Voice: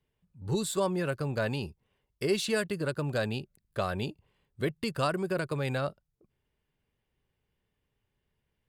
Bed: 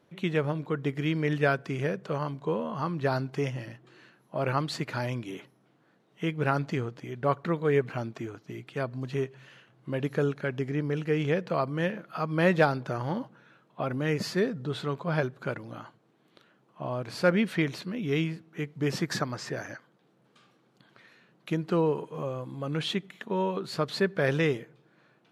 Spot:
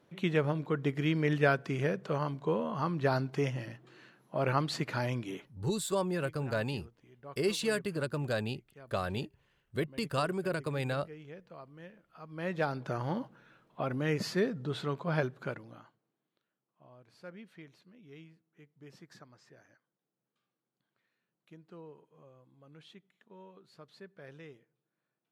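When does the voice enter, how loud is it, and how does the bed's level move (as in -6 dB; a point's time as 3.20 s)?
5.15 s, -2.5 dB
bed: 5.35 s -1.5 dB
5.67 s -21.5 dB
12.09 s -21.5 dB
12.90 s -3 dB
15.39 s -3 dB
16.42 s -24.5 dB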